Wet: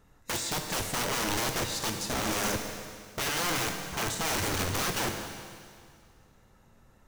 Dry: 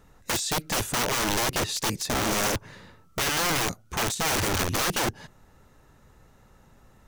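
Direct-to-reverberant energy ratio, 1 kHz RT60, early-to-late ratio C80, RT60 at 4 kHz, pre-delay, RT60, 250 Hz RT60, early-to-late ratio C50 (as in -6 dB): 4.0 dB, 2.1 s, 6.5 dB, 2.1 s, 21 ms, 2.1 s, 2.2 s, 5.5 dB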